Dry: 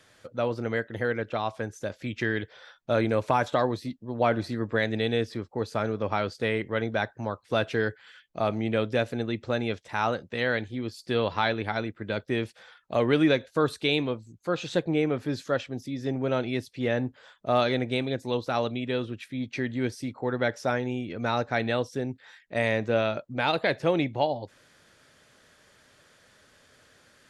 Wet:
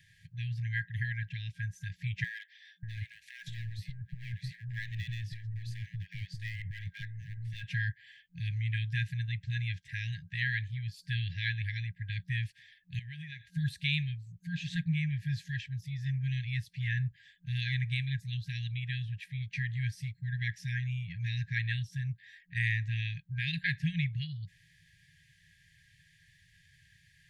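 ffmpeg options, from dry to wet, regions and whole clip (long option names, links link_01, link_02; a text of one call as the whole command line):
ffmpeg -i in.wav -filter_complex "[0:a]asettb=1/sr,asplit=3[link_01][link_02][link_03];[link_01]atrim=end=2.244[link_04];[link_02]atrim=start=2.24:end=7.72,asetpts=PTS-STARTPTS,afade=type=in:duration=0.004:curve=qsin,afade=type=out:start_time=5.476:duration=0.004:curve=qsin,acompressor=threshold=-26dB:ratio=4:attack=3.2:release=140:knee=1:detection=peak,aeval=exprs='clip(val(0),-1,0.0376)':channel_layout=same,acrossover=split=980[link_05][link_06];[link_05]adelay=590[link_07];[link_07][link_06]amix=inputs=2:normalize=0,atrim=end_sample=241668[link_08];[link_03]atrim=start=7.716[link_09];[link_04][link_08]acrossfade=duration=0.004:curve1=hsin:curve2=qsin[link_10];[link_10][link_09]acrossfade=duration=0.004:curve1=qsin:curve2=hsin,asettb=1/sr,asplit=3[link_11][link_12][link_13];[link_11]atrim=end=12.994[link_14];[link_12]atrim=start=12.99:end=13.45,asetpts=PTS-STARTPTS,afade=type=in:duration=0.004:curve=qsin,afade=type=out:start_time=0.456:duration=0.004:curve=qsin,highpass=frequency=170:poles=1,acompressor=threshold=-32dB:ratio=6:attack=3.2:release=140:knee=1:detection=peak[link_15];[link_13]atrim=start=13.446[link_16];[link_14][link_15]acrossfade=duration=0.004:curve1=hsin:curve2=qsin[link_17];[link_17][link_16]acrossfade=duration=0.004:curve1=qsin:curve2=hsin,afftfilt=real='re*(1-between(b*sr/4096,180,1600))':imag='im*(1-between(b*sr/4096,180,1600))':win_size=4096:overlap=0.75,equalizer=frequency=7200:width=0.32:gain=-12.5,volume=3.5dB" out.wav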